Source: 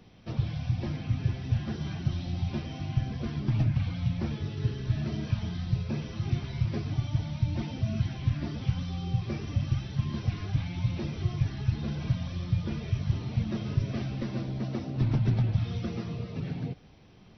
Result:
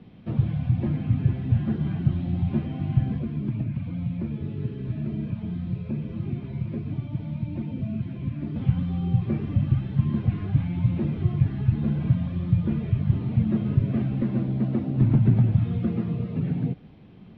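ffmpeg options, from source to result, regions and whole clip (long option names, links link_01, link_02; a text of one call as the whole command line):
ffmpeg -i in.wav -filter_complex "[0:a]asettb=1/sr,asplit=3[link_01][link_02][link_03];[link_01]atrim=end=3.184[link_04];[link_02]atrim=start=3.18:end=8.56,asetpts=PTS-STARTPTS,afade=type=in:duration=0.004:curve=qsin,afade=type=out:start_time=5.376:duration=0.004:curve=qsin,equalizer=frequency=2400:width=7.8:gain=7,bandreject=frequency=780:width=8,acrossover=split=190|890[link_05][link_06][link_07];[link_05]acompressor=threshold=-37dB:ratio=4[link_08];[link_06]acompressor=threshold=-40dB:ratio=4[link_09];[link_07]acompressor=threshold=-56dB:ratio=4[link_10];[link_08][link_09][link_10]amix=inputs=3:normalize=0[link_11];[link_03]atrim=start=8.556[link_12];[link_04][link_11]acrossfade=duration=0.004:curve1=hsin:curve2=qsin[link_13];[link_13][link_12]acrossfade=duration=0.004:curve1=qsin:curve2=hsin,acrossover=split=2600[link_14][link_15];[link_15]acompressor=threshold=-59dB:ratio=4:attack=1:release=60[link_16];[link_14][link_16]amix=inputs=2:normalize=0,lowpass=frequency=3600:width=0.5412,lowpass=frequency=3600:width=1.3066,equalizer=frequency=200:width_type=o:width=1.9:gain=10" out.wav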